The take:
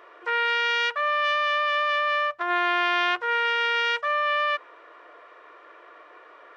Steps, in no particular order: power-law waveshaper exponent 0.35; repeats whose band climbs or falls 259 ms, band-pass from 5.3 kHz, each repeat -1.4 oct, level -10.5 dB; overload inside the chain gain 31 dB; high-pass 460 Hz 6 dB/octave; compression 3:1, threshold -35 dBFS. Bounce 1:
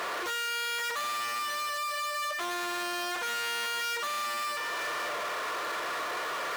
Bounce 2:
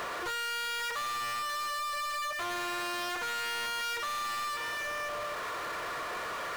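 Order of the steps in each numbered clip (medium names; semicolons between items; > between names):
compression > repeats whose band climbs or falls > power-law waveshaper > overload inside the chain > high-pass; repeats whose band climbs or falls > overload inside the chain > high-pass > power-law waveshaper > compression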